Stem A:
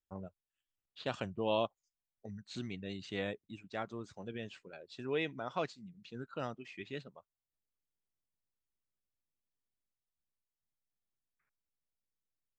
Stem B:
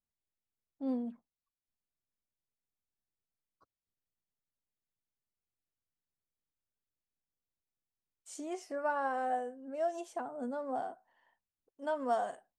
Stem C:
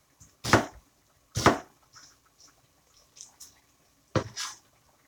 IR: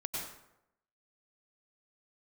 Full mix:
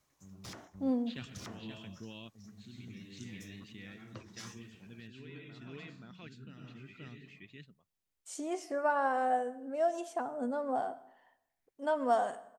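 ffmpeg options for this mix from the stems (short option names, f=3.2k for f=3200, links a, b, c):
-filter_complex "[0:a]firequalizer=gain_entry='entry(210,0);entry(580,-16);entry(1800,6);entry(4500,-4)':delay=0.05:min_phase=1,alimiter=level_in=6.5dB:limit=-24dB:level=0:latency=1:release=18,volume=-6.5dB,equalizer=f=1.4k:w=0.69:g=-8.5,adelay=100,volume=1.5dB,asplit=3[a][b][c];[b]volume=-8.5dB[d];[c]volume=-5.5dB[e];[1:a]volume=2.5dB,asplit=3[f][g][h];[g]volume=-17.5dB[i];[2:a]acompressor=threshold=-32dB:ratio=2.5,alimiter=level_in=2dB:limit=-24dB:level=0:latency=1:release=122,volume=-2dB,volume=-10dB[j];[h]apad=whole_len=563738[k];[a][k]sidechaingate=range=-33dB:threshold=-58dB:ratio=16:detection=peak[l];[3:a]atrim=start_sample=2205[m];[d][i]amix=inputs=2:normalize=0[n];[n][m]afir=irnorm=-1:irlink=0[o];[e]aecho=0:1:527:1[p];[l][f][j][o][p]amix=inputs=5:normalize=0"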